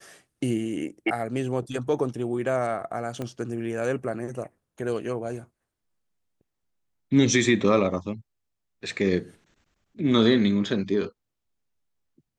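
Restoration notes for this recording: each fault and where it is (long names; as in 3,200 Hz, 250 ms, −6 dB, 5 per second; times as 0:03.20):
0:03.22: click −19 dBFS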